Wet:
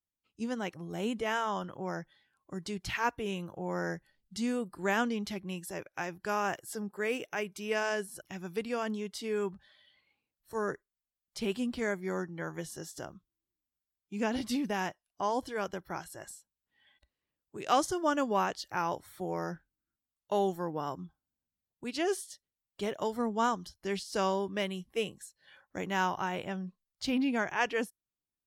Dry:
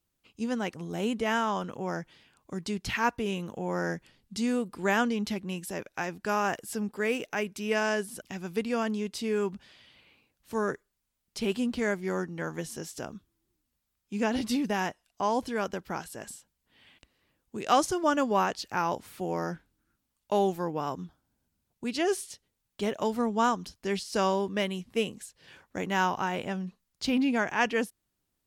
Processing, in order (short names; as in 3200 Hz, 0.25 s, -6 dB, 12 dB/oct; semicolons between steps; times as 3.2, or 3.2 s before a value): spectral noise reduction 14 dB; gain -3.5 dB